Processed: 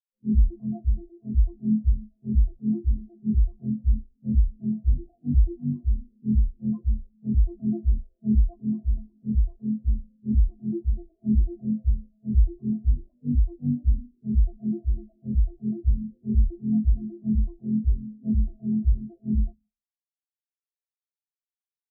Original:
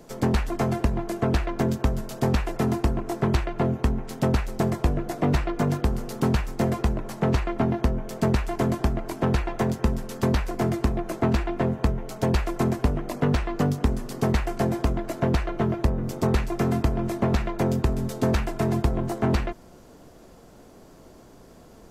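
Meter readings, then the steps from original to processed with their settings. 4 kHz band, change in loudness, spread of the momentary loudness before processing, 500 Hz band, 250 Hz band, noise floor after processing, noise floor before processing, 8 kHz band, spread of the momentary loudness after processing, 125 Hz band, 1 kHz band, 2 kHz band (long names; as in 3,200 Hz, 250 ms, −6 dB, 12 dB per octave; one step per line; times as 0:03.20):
below −40 dB, −1.0 dB, 3 LU, −19.5 dB, −1.0 dB, below −85 dBFS, −50 dBFS, below −40 dB, 6 LU, −1.0 dB, below −30 dB, below −40 dB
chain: four-comb reverb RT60 1.5 s, combs from 29 ms, DRR 11 dB
transient designer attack −10 dB, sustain +6 dB
every bin expanded away from the loudest bin 4 to 1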